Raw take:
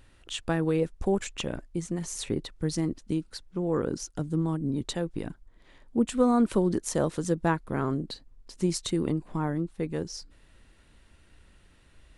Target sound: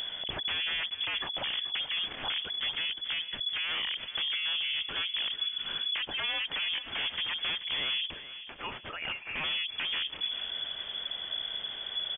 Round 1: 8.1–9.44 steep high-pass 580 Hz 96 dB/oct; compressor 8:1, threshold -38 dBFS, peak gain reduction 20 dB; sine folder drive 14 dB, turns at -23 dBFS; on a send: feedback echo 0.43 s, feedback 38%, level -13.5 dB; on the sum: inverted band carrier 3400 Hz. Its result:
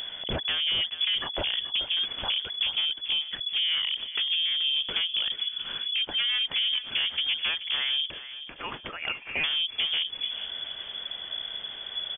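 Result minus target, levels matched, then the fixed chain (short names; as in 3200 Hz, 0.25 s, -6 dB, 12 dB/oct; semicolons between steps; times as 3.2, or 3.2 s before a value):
sine folder: distortion -12 dB
8.1–9.44 steep high-pass 580 Hz 96 dB/oct; compressor 8:1, threshold -38 dBFS, peak gain reduction 20 dB; sine folder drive 14 dB, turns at -30 dBFS; on a send: feedback echo 0.43 s, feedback 38%, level -13.5 dB; on the sum: inverted band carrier 3400 Hz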